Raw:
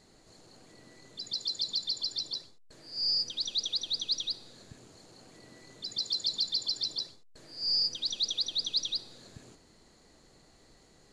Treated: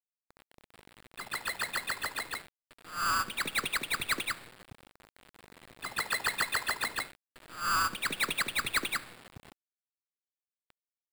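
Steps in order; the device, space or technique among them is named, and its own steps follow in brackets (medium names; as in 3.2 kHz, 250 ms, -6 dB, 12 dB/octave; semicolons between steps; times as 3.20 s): 0.92–2.39 s: treble shelf 4.1 kHz -3 dB; early 8-bit sampler (sample-rate reducer 6.1 kHz, jitter 0%; bit crusher 8-bit)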